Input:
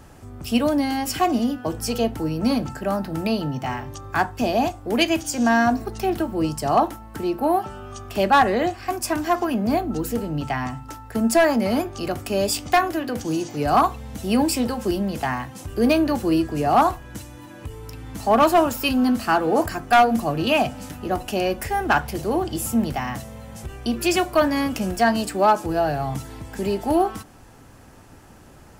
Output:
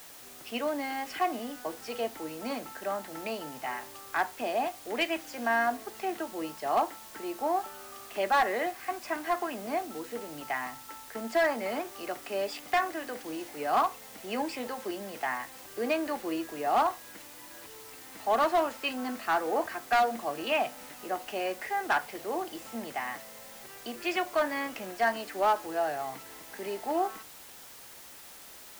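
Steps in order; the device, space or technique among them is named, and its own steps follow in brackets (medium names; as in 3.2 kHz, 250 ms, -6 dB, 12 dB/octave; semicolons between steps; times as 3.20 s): drive-through speaker (band-pass 450–3200 Hz; peaking EQ 2 kHz +6.5 dB 0.31 oct; hard clipper -12.5 dBFS, distortion -16 dB; white noise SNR 17 dB); trim -7 dB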